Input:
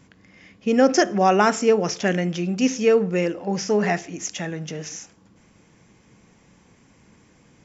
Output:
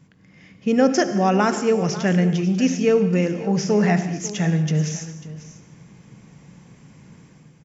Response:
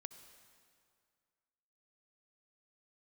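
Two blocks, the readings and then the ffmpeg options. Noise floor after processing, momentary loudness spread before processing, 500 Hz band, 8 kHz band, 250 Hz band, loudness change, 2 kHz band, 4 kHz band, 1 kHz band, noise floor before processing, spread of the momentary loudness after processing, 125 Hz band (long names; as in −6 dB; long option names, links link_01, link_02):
−52 dBFS, 14 LU, −0.5 dB, can't be measured, +3.5 dB, +1.0 dB, −1.5 dB, −1.0 dB, −2.0 dB, −56 dBFS, 11 LU, +8.5 dB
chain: -filter_complex "[0:a]equalizer=frequency=150:width_type=o:width=0.67:gain=12.5,dynaudnorm=framelen=150:gausssize=5:maxgain=8dB,aecho=1:1:544:0.168[link_01];[1:a]atrim=start_sample=2205,afade=type=out:start_time=0.3:duration=0.01,atrim=end_sample=13671[link_02];[link_01][link_02]afir=irnorm=-1:irlink=0"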